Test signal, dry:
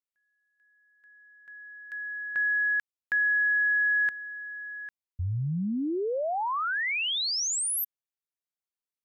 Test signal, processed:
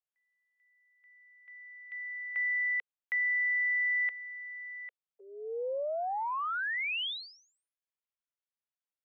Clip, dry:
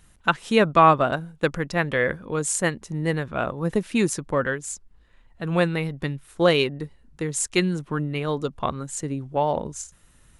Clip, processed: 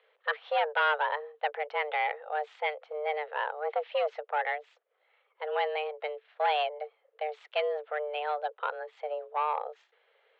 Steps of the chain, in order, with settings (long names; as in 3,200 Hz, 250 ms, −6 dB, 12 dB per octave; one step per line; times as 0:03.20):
soft clipping −18 dBFS
single-sideband voice off tune +300 Hz 160–3,200 Hz
level −4 dB